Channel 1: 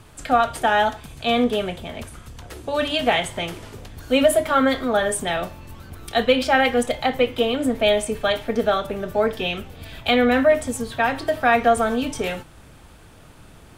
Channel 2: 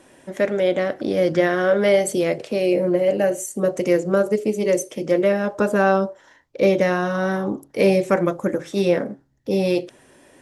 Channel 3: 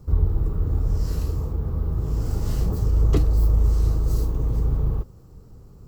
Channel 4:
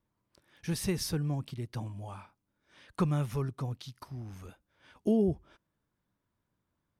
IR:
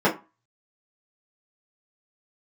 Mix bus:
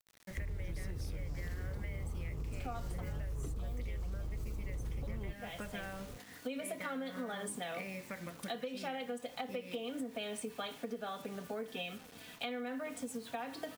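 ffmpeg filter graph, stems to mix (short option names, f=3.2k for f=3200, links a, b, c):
-filter_complex "[0:a]highpass=f=120:w=0.5412,highpass=f=120:w=1.3066,aecho=1:1:4.1:0.62,adelay=2350,volume=-14dB[a];[1:a]firequalizer=gain_entry='entry(170,0);entry(370,-12);entry(530,-6);entry(1300,-3);entry(2000,12);entry(3400,-1)':delay=0.05:min_phase=1,acompressor=threshold=-29dB:ratio=6,volume=-12dB[b];[2:a]alimiter=limit=-18.5dB:level=0:latency=1,adelay=300,volume=-5.5dB[c];[3:a]asoftclip=type=tanh:threshold=-26.5dB,volume=-8dB,asplit=2[d][e];[e]apad=whole_len=711182[f];[a][f]sidechaincompress=threshold=-55dB:ratio=8:attack=16:release=690[g];[g][b][d]amix=inputs=3:normalize=0,acrusher=bits=8:mix=0:aa=0.000001,acompressor=threshold=-32dB:ratio=2,volume=0dB[h];[c][h]amix=inputs=2:normalize=0,acompressor=threshold=-37dB:ratio=6"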